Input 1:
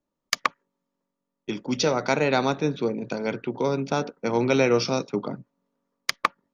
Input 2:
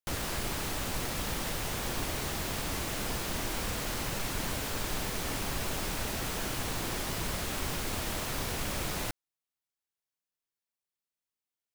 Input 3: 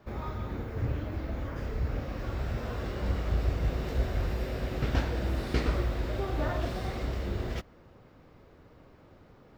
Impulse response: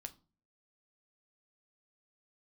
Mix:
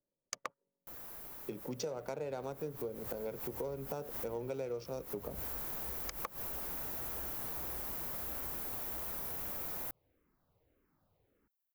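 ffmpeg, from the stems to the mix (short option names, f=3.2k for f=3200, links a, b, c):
-filter_complex "[0:a]equalizer=f=125:t=o:w=1:g=6,equalizer=f=250:t=o:w=1:g=-4,equalizer=f=500:t=o:w=1:g=10,equalizer=f=2k:t=o:w=1:g=-4,equalizer=f=4k:t=o:w=1:g=-8,equalizer=f=8k:t=o:w=1:g=11,adynamicsmooth=sensitivity=6.5:basefreq=960,volume=-11.5dB,asplit=2[a][b];[1:a]equalizer=f=3.3k:w=0.56:g=-12,asplit=2[c][d];[d]highpass=f=720:p=1,volume=14dB,asoftclip=type=tanh:threshold=-22dB[e];[c][e]amix=inputs=2:normalize=0,lowpass=f=5.8k:p=1,volume=-6dB,aexciter=amount=4.9:drive=5.3:freq=11k,adelay=800,volume=-9dB,afade=t=in:st=2.33:d=0.27:silence=0.266073[f];[2:a]asplit=2[g][h];[h]afreqshift=-1.7[i];[g][i]amix=inputs=2:normalize=1,adelay=1900,volume=-17.5dB[j];[b]apad=whole_len=553195[k];[f][k]sidechaincompress=threshold=-46dB:ratio=4:attack=16:release=104[l];[a][l][j]amix=inputs=3:normalize=0,acompressor=threshold=-37dB:ratio=6"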